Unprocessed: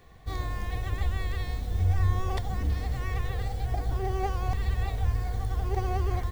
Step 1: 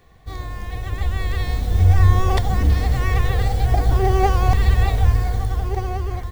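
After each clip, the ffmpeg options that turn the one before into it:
ffmpeg -i in.wav -af "dynaudnorm=framelen=230:gausssize=11:maxgain=11.5dB,volume=1.5dB" out.wav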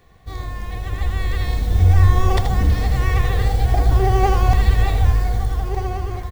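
ffmpeg -i in.wav -af "aecho=1:1:80:0.398" out.wav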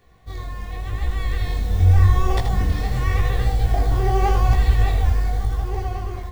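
ffmpeg -i in.wav -af "flanger=delay=16.5:depth=8:speed=0.87" out.wav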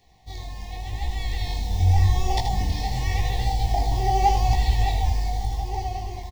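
ffmpeg -i in.wav -af "firequalizer=gain_entry='entry(300,0);entry(510,-5);entry(870,13);entry(1300,-27);entry(1900,2);entry(5200,12);entry(8600,3)':delay=0.05:min_phase=1,volume=-4.5dB" out.wav

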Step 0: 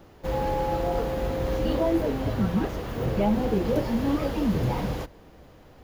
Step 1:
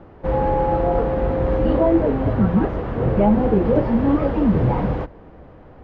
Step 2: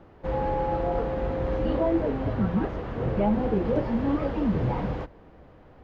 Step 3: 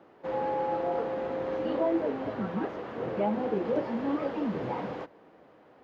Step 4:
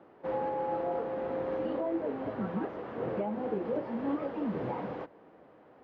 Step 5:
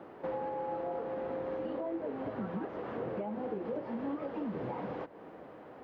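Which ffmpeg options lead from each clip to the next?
ffmpeg -i in.wav -af "lowpass=1600,volume=7.5dB" out.wav
ffmpeg -i in.wav -af "highshelf=frequency=2800:gain=9.5,volume=-8dB" out.wav
ffmpeg -i in.wav -af "highpass=260,volume=-2dB" out.wav
ffmpeg -i in.wav -af "aemphasis=mode=reproduction:type=75kf,alimiter=limit=-23.5dB:level=0:latency=1:release=489" out.wav
ffmpeg -i in.wav -af "acompressor=threshold=-45dB:ratio=3,volume=7dB" out.wav

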